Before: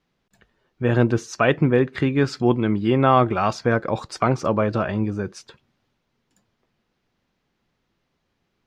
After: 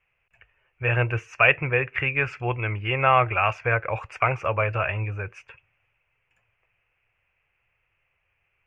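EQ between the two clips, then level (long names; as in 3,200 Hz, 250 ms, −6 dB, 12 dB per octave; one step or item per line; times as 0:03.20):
drawn EQ curve 110 Hz 0 dB, 230 Hz −25 dB, 510 Hz −4 dB, 990 Hz −2 dB, 1,800 Hz +3 dB, 2,600 Hz +14 dB, 3,900 Hz −26 dB, 6,200 Hz −15 dB, 9,400 Hz −18 dB
0.0 dB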